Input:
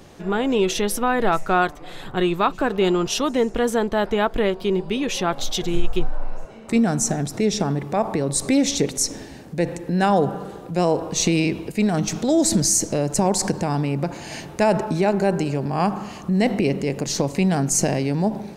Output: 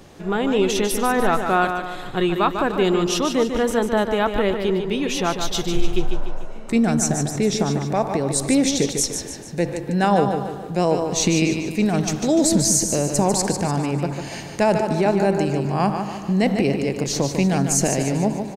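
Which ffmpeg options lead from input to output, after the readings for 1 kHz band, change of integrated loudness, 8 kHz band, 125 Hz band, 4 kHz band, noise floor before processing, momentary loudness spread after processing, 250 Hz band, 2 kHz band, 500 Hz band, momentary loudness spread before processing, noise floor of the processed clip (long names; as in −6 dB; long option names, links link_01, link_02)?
+1.0 dB, +1.0 dB, +1.0 dB, +1.0 dB, +1.0 dB, −39 dBFS, 7 LU, +1.0 dB, +1.0 dB, +1.0 dB, 7 LU, −33 dBFS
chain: -af "aecho=1:1:148|296|444|592|740:0.447|0.205|0.0945|0.0435|0.02"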